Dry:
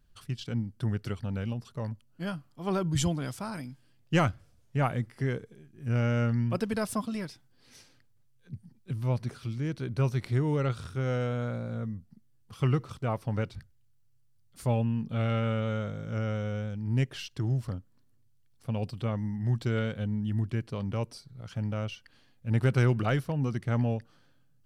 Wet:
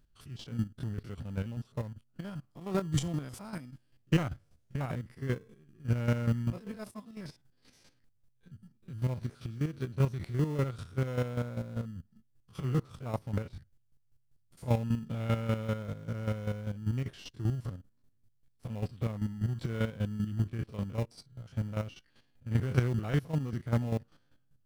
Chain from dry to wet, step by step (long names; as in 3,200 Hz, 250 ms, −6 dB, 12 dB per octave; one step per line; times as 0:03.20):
spectrum averaged block by block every 50 ms
0:06.50–0:07.17: downward expander −26 dBFS
square-wave tremolo 5.1 Hz, depth 65%, duty 25%
in parallel at −10.5 dB: decimation without filtering 29×